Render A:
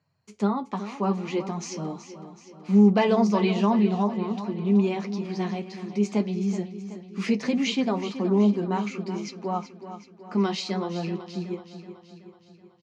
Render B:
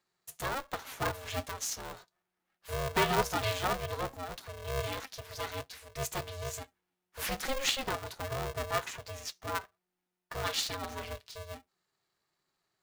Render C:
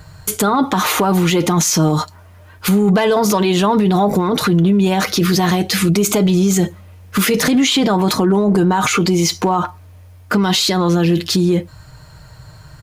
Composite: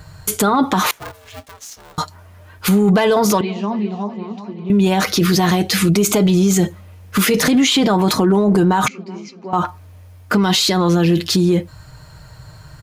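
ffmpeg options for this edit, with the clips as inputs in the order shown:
-filter_complex "[0:a]asplit=2[a][b];[2:a]asplit=4[c][d][e][f];[c]atrim=end=0.912[g];[1:a]atrim=start=0.908:end=1.982[h];[d]atrim=start=1.978:end=3.412[i];[a]atrim=start=3.408:end=4.702[j];[e]atrim=start=4.698:end=8.882[k];[b]atrim=start=8.878:end=9.532[l];[f]atrim=start=9.528[m];[g][h]acrossfade=d=0.004:c1=hsin:c2=hsin[n];[n][i]acrossfade=d=0.004:c1=hsin:c2=hsin[o];[o][j]acrossfade=d=0.004:c1=hsin:c2=hsin[p];[p][k]acrossfade=d=0.004:c1=hsin:c2=hsin[q];[q][l]acrossfade=d=0.004:c1=hsin:c2=hsin[r];[r][m]acrossfade=d=0.004:c1=hsin:c2=hsin"

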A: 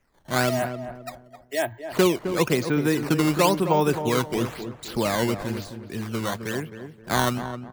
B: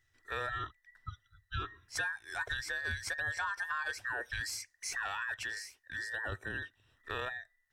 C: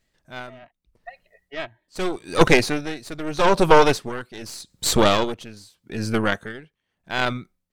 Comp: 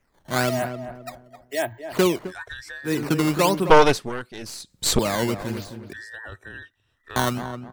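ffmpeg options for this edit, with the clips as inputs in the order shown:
-filter_complex "[1:a]asplit=2[a][b];[0:a]asplit=4[c][d][e][f];[c]atrim=end=2.33[g];[a]atrim=start=2.23:end=2.93[h];[d]atrim=start=2.83:end=3.702[i];[2:a]atrim=start=3.698:end=4.992[j];[e]atrim=start=4.988:end=5.932[k];[b]atrim=start=5.928:end=7.162[l];[f]atrim=start=7.158[m];[g][h]acrossfade=d=0.1:c1=tri:c2=tri[n];[n][i]acrossfade=d=0.1:c1=tri:c2=tri[o];[o][j]acrossfade=d=0.004:c1=hsin:c2=hsin[p];[p][k]acrossfade=d=0.004:c1=hsin:c2=hsin[q];[q][l]acrossfade=d=0.004:c1=hsin:c2=hsin[r];[r][m]acrossfade=d=0.004:c1=hsin:c2=hsin"

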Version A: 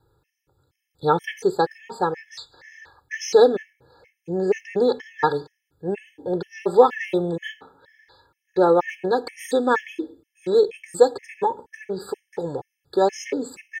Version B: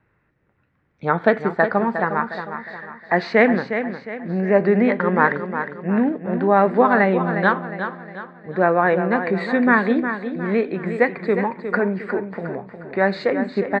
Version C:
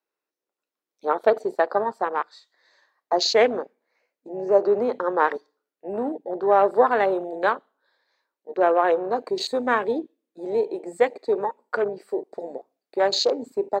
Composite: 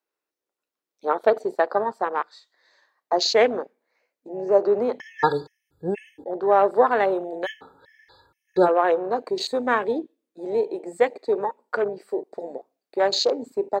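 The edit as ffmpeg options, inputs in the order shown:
-filter_complex "[0:a]asplit=2[a][b];[2:a]asplit=3[c][d][e];[c]atrim=end=5.002[f];[a]atrim=start=4.998:end=6.242[g];[d]atrim=start=6.238:end=7.47[h];[b]atrim=start=7.43:end=8.69[i];[e]atrim=start=8.65[j];[f][g]acrossfade=d=0.004:c1=hsin:c2=hsin[k];[k][h]acrossfade=d=0.004:c1=hsin:c2=hsin[l];[l][i]acrossfade=d=0.04:c1=tri:c2=tri[m];[m][j]acrossfade=d=0.04:c1=tri:c2=tri"

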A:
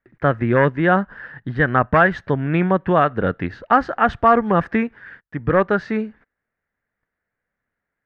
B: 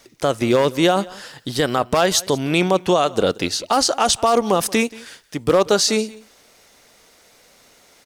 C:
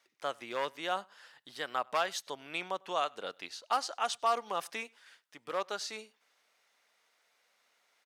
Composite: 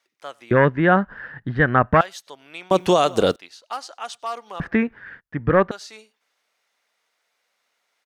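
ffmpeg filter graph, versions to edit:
-filter_complex "[0:a]asplit=2[a][b];[2:a]asplit=4[c][d][e][f];[c]atrim=end=0.512[g];[a]atrim=start=0.508:end=2.012[h];[d]atrim=start=2.008:end=2.712[i];[1:a]atrim=start=2.708:end=3.362[j];[e]atrim=start=3.358:end=4.602[k];[b]atrim=start=4.598:end=5.712[l];[f]atrim=start=5.708[m];[g][h]acrossfade=d=0.004:c1=hsin:c2=hsin[n];[n][i]acrossfade=d=0.004:c1=hsin:c2=hsin[o];[o][j]acrossfade=d=0.004:c1=hsin:c2=hsin[p];[p][k]acrossfade=d=0.004:c1=hsin:c2=hsin[q];[q][l]acrossfade=d=0.004:c1=hsin:c2=hsin[r];[r][m]acrossfade=d=0.004:c1=hsin:c2=hsin"

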